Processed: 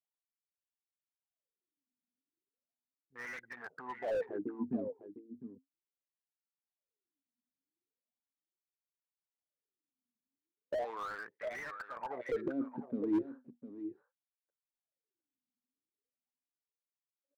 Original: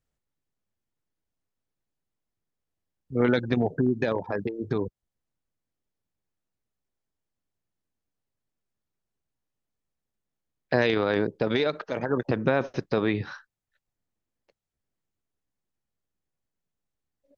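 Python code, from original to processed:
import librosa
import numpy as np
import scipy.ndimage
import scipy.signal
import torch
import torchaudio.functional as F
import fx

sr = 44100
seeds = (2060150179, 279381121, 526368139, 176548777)

p1 = fx.env_lowpass(x, sr, base_hz=410.0, full_db=-20.5)
p2 = np.clip(10.0 ** (21.5 / 20.0) * p1, -1.0, 1.0) / 10.0 ** (21.5 / 20.0)
p3 = fx.wah_lfo(p2, sr, hz=0.37, low_hz=240.0, high_hz=2000.0, q=18.0)
p4 = p3 + fx.echo_single(p3, sr, ms=704, db=-12.0, dry=0)
p5 = fx.slew_limit(p4, sr, full_power_hz=5.2)
y = p5 * 10.0 ** (9.0 / 20.0)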